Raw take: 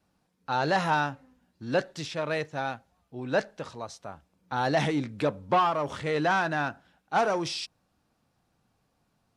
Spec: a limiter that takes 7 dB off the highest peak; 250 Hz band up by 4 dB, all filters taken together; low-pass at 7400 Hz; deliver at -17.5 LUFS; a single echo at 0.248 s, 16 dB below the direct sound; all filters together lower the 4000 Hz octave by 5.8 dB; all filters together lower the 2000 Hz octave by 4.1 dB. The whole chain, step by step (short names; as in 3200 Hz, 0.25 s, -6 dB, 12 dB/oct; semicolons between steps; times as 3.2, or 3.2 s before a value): LPF 7400 Hz; bell 250 Hz +5.5 dB; bell 2000 Hz -5 dB; bell 4000 Hz -5.5 dB; limiter -19.5 dBFS; echo 0.248 s -16 dB; gain +13.5 dB